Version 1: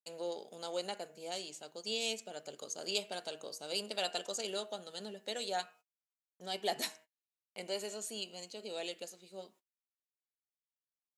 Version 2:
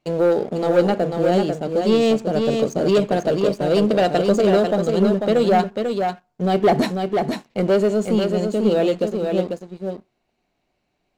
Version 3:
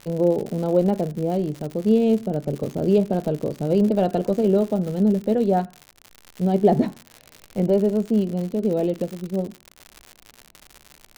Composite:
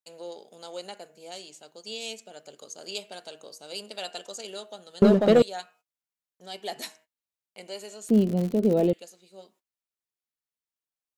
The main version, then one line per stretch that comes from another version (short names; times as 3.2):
1
5.02–5.42 from 2
8.09–8.93 from 3